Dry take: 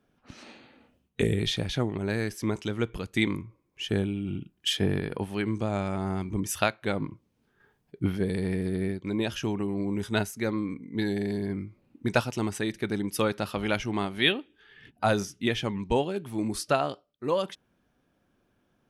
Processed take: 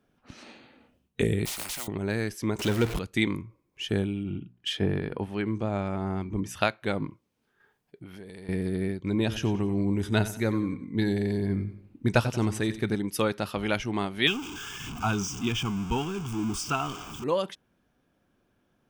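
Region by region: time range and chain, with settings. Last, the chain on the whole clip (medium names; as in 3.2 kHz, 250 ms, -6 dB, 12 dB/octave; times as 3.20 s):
1.45–1.88 s: block-companded coder 7-bit + static phaser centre 460 Hz, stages 6 + spectrum-flattening compressor 10:1
2.59–2.99 s: jump at every zero crossing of -33 dBFS + waveshaping leveller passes 1
4.23–6.61 s: low-pass 2.7 kHz 6 dB/octave + hum notches 60/120/180/240 Hz
7.11–8.49 s: bass shelf 320 Hz -9.5 dB + compression 8:1, threshold -40 dBFS
8.99–12.95 s: bass shelf 130 Hz +10 dB + feedback delay 91 ms, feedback 41%, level -14 dB
14.27–17.24 s: jump at every zero crossing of -29.5 dBFS + static phaser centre 2.8 kHz, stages 8
whole clip: none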